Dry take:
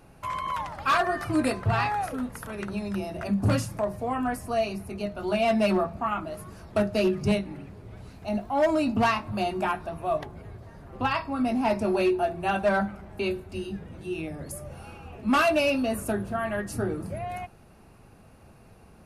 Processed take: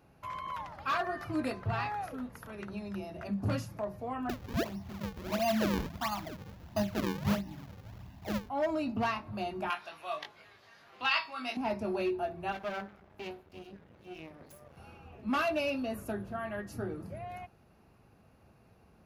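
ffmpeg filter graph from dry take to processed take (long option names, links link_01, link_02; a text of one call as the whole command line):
ffmpeg -i in.wav -filter_complex "[0:a]asettb=1/sr,asplit=3[link_01][link_02][link_03];[link_01]atrim=end=4.294[link_04];[link_02]atrim=start=4.29:end=8.49,asetpts=PTS-STARTPTS,afade=type=in:duration=0.004:curve=qsin,afade=type=out:start_time=4.196:duration=0.004:curve=qsin,equalizer=frequency=6900:width_type=o:width=0.91:gain=-14.5,aecho=1:1:1.1:0.91,atrim=end_sample=185220,acrusher=samples=38:mix=1:aa=0.000001:lfo=1:lforange=60.8:lforate=1.5[link_05];[link_03]atrim=start=8.486[link_06];[link_04][link_05]acrossfade=duration=0.004:curve1=hsin:curve2=qsin[link_07];[link_07][link_06]acrossfade=duration=0.004:curve1=qsin:curve2=hsin,asettb=1/sr,asplit=3[link_08][link_09][link_10];[link_08]atrim=end=9.704[link_11];[link_09]atrim=start=9.7:end=11.57,asetpts=PTS-STARTPTS,afade=type=in:duration=0.004:curve=qsin,afade=type=out:start_time=1.866:duration=0.004:curve=qsin,highpass=frequency=1200:poles=1,equalizer=frequency=3700:width=0.45:gain=13,asplit=2[link_12][link_13];[link_13]adelay=20,volume=-3dB[link_14];[link_12][link_14]amix=inputs=2:normalize=0,atrim=end_sample=82467[link_15];[link_10]atrim=start=11.566[link_16];[link_11][link_15]acrossfade=duration=0.004:curve1=hsin:curve2=qsin[link_17];[link_17][link_16]acrossfade=duration=0.004:curve1=qsin:curve2=hsin,asettb=1/sr,asplit=3[link_18][link_19][link_20];[link_18]atrim=end=12.524[link_21];[link_19]atrim=start=12.52:end=14.77,asetpts=PTS-STARTPTS,afade=type=in:duration=0.004:curve=qsin,afade=type=out:start_time=2.246:duration=0.004:curve=qsin,bass=frequency=250:gain=-4,treble=frequency=4000:gain=-1,aeval=exprs='max(val(0),0)':channel_layout=same[link_22];[link_20]atrim=start=14.766[link_23];[link_21][link_22]acrossfade=duration=0.004:curve1=hsin:curve2=qsin[link_24];[link_24][link_23]acrossfade=duration=0.004:curve1=qsin:curve2=hsin,highpass=46,equalizer=frequency=8700:width=2.7:gain=-12.5,volume=-8.5dB" out.wav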